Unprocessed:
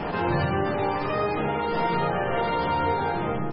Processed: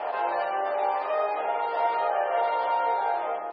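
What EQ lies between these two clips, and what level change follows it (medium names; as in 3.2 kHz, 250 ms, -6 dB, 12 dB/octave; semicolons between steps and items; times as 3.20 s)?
ladder high-pass 570 Hz, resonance 55%; resonant low-pass 4.7 kHz, resonance Q 2; distance through air 360 m; +7.0 dB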